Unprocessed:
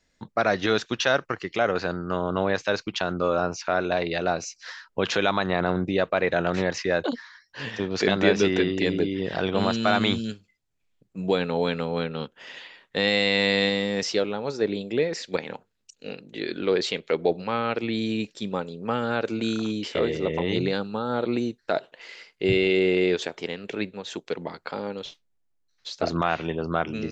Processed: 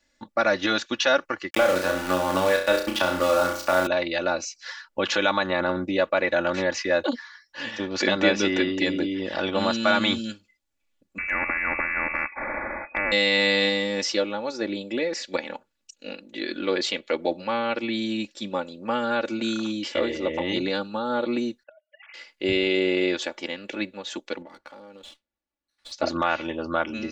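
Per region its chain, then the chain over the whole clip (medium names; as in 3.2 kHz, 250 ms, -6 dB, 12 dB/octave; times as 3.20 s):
1.50–3.87 s: small samples zeroed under -30 dBFS + flutter echo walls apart 5.6 m, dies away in 0.42 s + three bands compressed up and down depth 70%
11.18–13.12 s: frequency inversion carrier 2.5 kHz + dynamic bell 920 Hz, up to -8 dB, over -46 dBFS, Q 2.2 + spectrum-flattening compressor 4:1
21.63–22.14 s: formants replaced by sine waves + inverted gate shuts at -33 dBFS, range -33 dB
24.42–25.92 s: distance through air 68 m + compression 12:1, threshold -40 dBFS + sliding maximum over 3 samples
whole clip: bass shelf 260 Hz -7 dB; comb 3.5 ms, depth 81%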